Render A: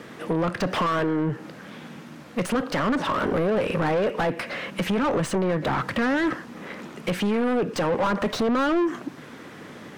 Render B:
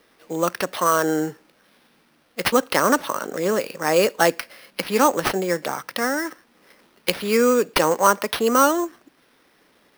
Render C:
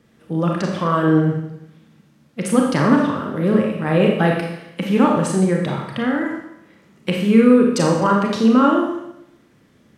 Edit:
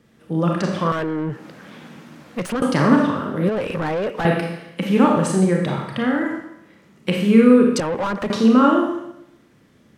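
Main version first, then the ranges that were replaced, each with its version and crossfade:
C
0.92–2.62 from A
3.49–4.25 from A
7.8–8.3 from A
not used: B

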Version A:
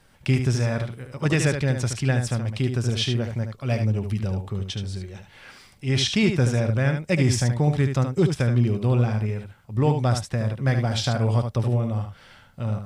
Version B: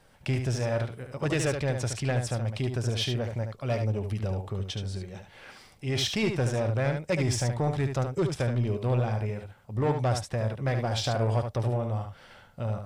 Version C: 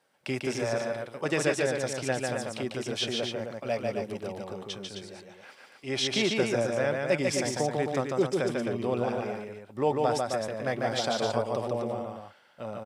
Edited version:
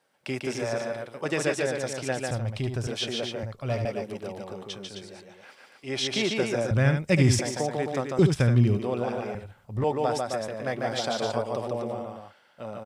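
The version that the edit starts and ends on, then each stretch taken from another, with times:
C
2.31–2.87 from B
3.43–3.85 from B
6.71–7.39 from A
8.19–8.79 from A
9.35–9.84 from B

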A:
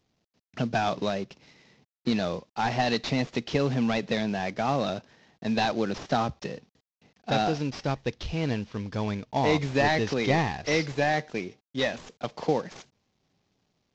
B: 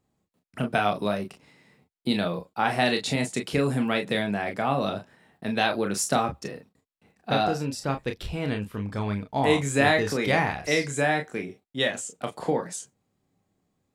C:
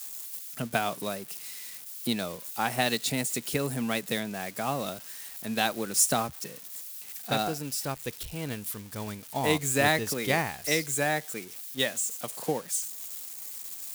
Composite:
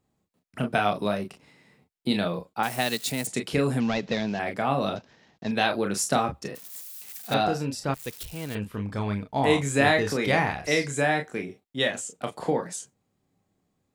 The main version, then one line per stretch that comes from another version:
B
2.63–3.27 from C
3.8–4.39 from A
4.96–5.51 from A
6.55–7.34 from C
7.94–8.55 from C

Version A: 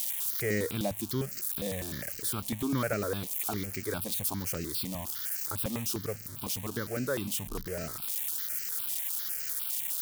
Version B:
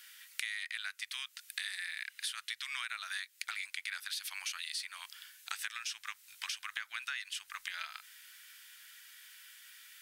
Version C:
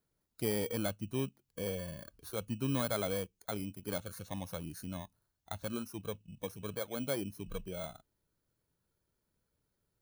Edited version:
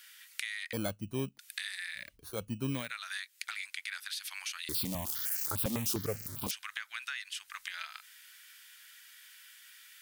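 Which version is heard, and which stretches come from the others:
B
0.73–1.39 from C
2.06–2.8 from C, crossfade 0.24 s
4.69–6.51 from A

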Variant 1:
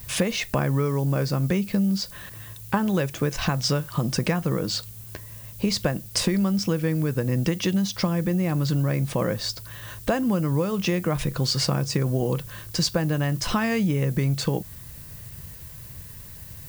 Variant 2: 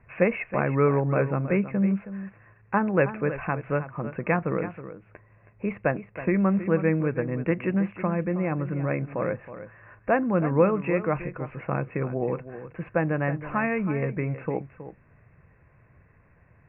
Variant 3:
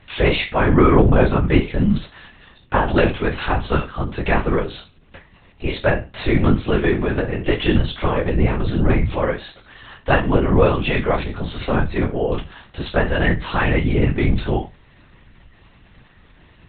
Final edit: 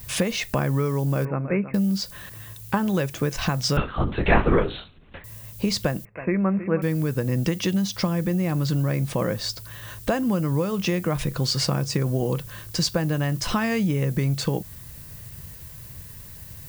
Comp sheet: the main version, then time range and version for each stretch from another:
1
1.25–1.74 from 2
3.77–5.24 from 3
6.05–6.82 from 2

